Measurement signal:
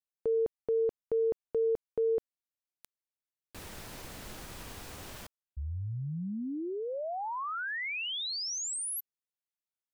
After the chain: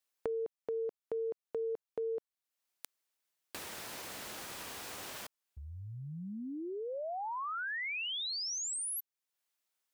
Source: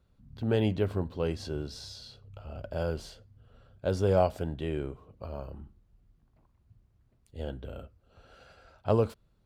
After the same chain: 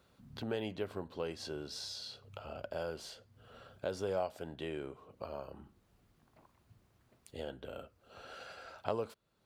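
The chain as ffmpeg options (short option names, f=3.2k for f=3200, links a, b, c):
-af "highpass=f=490:p=1,acompressor=threshold=-57dB:ratio=2:attack=16:release=579:detection=peak,volume=10dB"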